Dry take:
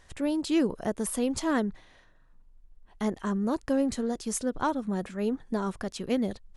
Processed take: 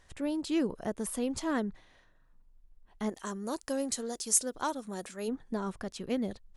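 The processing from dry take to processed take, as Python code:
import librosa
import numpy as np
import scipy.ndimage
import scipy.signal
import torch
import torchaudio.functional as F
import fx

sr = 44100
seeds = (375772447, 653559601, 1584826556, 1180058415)

y = fx.bass_treble(x, sr, bass_db=-10, treble_db=13, at=(3.09, 5.27), fade=0.02)
y = y * librosa.db_to_amplitude(-4.5)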